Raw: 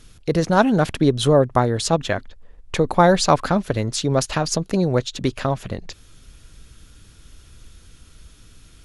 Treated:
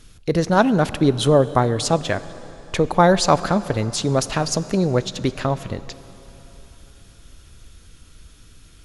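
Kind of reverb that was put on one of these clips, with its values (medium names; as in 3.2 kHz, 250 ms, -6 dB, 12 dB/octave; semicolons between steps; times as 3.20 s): plate-style reverb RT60 3.8 s, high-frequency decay 0.8×, DRR 15 dB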